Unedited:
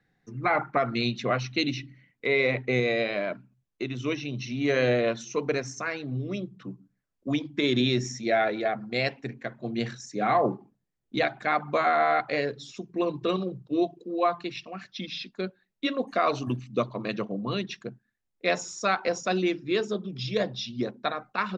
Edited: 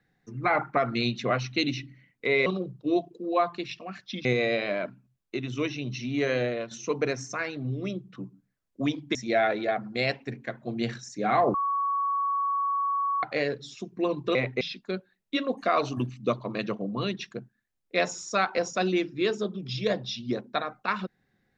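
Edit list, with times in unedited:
2.46–2.72 s: swap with 13.32–15.11 s
4.52–5.18 s: fade out, to -10 dB
7.62–8.12 s: delete
10.51–12.20 s: bleep 1.12 kHz -24 dBFS

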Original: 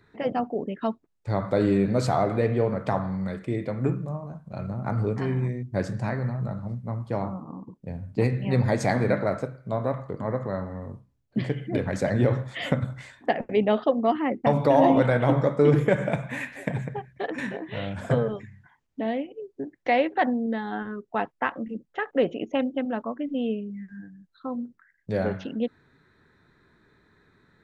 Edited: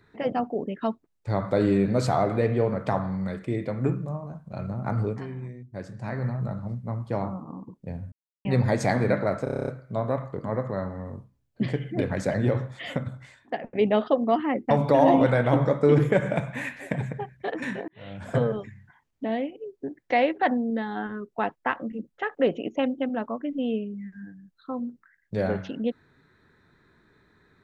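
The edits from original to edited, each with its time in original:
5.00–6.24 s: dip -10 dB, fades 0.27 s
8.12–8.45 s: mute
9.44 s: stutter 0.03 s, 9 plays
11.90–13.51 s: fade out quadratic, to -7 dB
17.64–18.19 s: fade in linear

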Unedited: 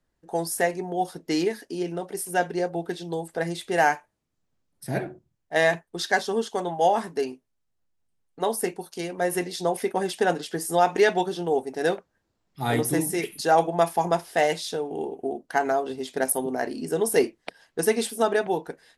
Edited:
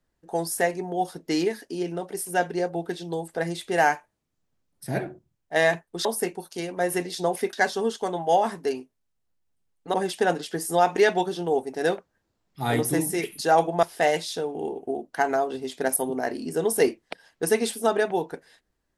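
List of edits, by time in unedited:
8.46–9.94 s: move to 6.05 s
13.83–14.19 s: delete

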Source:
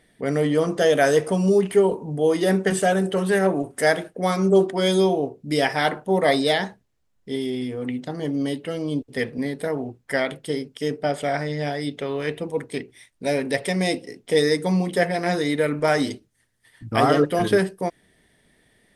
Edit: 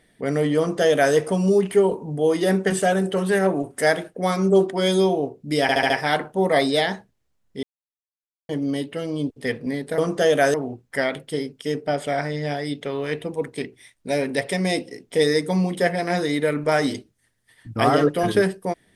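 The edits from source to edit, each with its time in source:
0.58–1.14 s: copy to 9.70 s
5.62 s: stutter 0.07 s, 5 plays
7.35–8.21 s: mute

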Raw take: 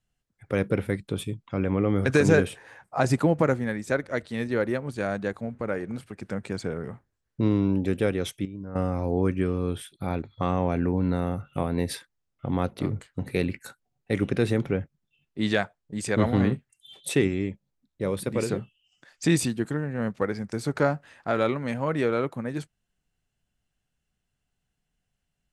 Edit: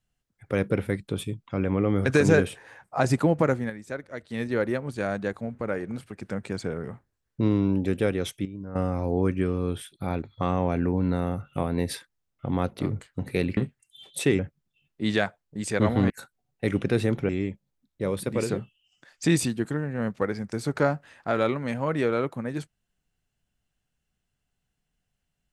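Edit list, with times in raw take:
3.33–4.67 s: dip -8.5 dB, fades 0.37 s logarithmic
13.57–14.76 s: swap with 16.47–17.29 s

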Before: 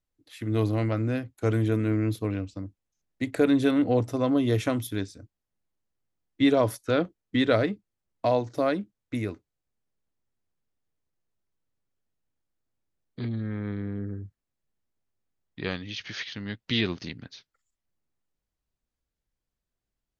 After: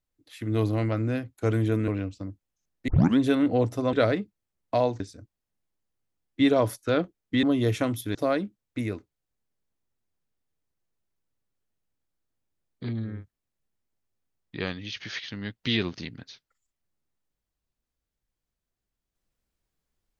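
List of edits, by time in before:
1.88–2.24 s: delete
3.24 s: tape start 0.30 s
4.29–5.01 s: swap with 7.44–8.51 s
13.49–14.17 s: delete, crossfade 0.24 s

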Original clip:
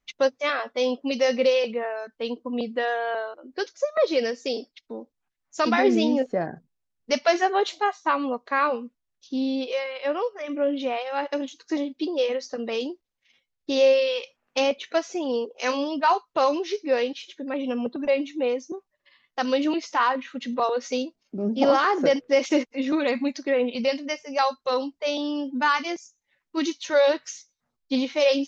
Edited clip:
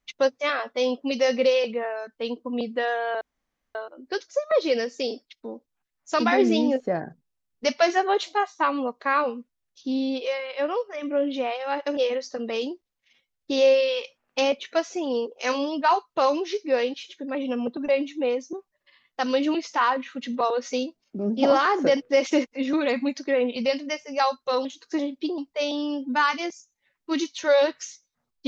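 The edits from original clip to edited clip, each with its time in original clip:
3.21 s: insert room tone 0.54 s
11.43–12.16 s: move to 24.84 s

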